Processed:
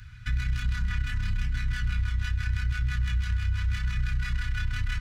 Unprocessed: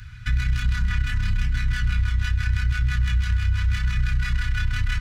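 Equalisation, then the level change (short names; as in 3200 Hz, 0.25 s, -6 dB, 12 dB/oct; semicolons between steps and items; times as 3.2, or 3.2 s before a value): bell 320 Hz +4.5 dB 0.26 oct; -5.5 dB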